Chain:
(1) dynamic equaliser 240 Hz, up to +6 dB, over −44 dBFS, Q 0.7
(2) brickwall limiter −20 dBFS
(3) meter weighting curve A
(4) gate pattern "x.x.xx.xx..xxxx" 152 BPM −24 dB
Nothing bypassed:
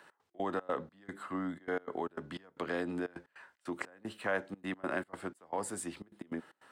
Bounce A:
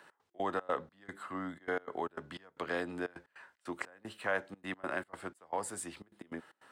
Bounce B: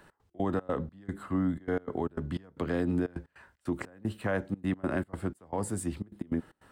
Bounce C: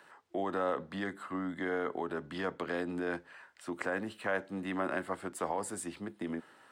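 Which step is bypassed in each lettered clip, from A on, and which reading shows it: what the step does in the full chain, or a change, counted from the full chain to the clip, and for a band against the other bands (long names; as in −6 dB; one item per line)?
1, change in momentary loudness spread +2 LU
3, 125 Hz band +13.5 dB
4, 8 kHz band −1.5 dB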